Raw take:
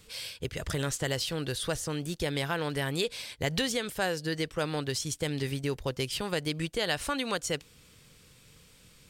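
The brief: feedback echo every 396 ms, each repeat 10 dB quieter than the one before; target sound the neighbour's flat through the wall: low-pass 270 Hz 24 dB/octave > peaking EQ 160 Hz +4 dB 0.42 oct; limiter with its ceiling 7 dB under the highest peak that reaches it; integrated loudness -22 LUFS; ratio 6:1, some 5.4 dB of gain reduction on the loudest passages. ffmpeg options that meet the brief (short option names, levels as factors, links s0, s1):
-af "acompressor=threshold=0.0282:ratio=6,alimiter=level_in=1.33:limit=0.0631:level=0:latency=1,volume=0.75,lowpass=f=270:w=0.5412,lowpass=f=270:w=1.3066,equalizer=f=160:t=o:w=0.42:g=4,aecho=1:1:396|792|1188|1584:0.316|0.101|0.0324|0.0104,volume=9.44"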